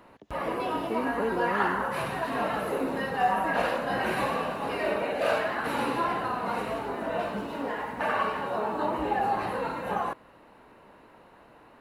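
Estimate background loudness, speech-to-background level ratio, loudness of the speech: -29.5 LUFS, -4.0 dB, -33.5 LUFS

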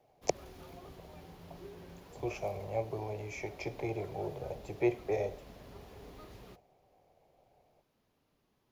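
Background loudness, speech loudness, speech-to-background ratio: -53.0 LUFS, -37.5 LUFS, 15.5 dB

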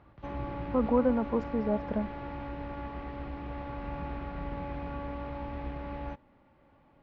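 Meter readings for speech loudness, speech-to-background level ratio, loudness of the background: -30.0 LUFS, 9.0 dB, -39.0 LUFS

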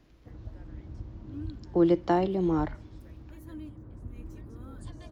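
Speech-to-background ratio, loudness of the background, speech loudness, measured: 18.0 dB, -44.5 LUFS, -26.5 LUFS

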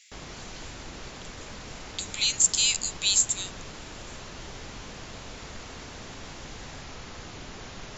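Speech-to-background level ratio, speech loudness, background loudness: 18.0 dB, -23.5 LUFS, -41.5 LUFS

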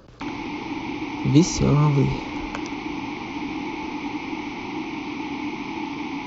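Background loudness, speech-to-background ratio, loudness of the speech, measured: -30.5 LUFS, 10.0 dB, -20.5 LUFS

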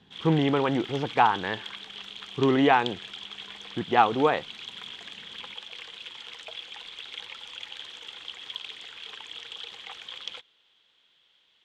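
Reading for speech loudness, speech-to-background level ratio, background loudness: -24.5 LUFS, 14.5 dB, -39.0 LUFS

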